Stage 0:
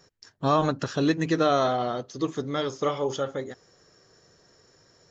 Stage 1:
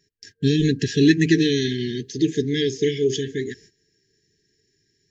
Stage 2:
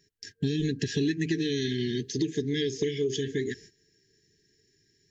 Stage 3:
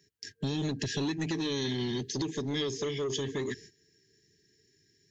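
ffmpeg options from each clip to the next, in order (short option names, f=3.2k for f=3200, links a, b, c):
-af "agate=range=-16dB:threshold=-54dB:ratio=16:detection=peak,afftfilt=real='re*(1-between(b*sr/4096,460,1600))':imag='im*(1-between(b*sr/4096,460,1600))':win_size=4096:overlap=0.75,volume=8.5dB"
-af "acompressor=threshold=-25dB:ratio=6"
-filter_complex "[0:a]highpass=59,acrossover=split=100|2400[a][b][c];[b]asoftclip=type=tanh:threshold=-28.5dB[d];[a][d][c]amix=inputs=3:normalize=0"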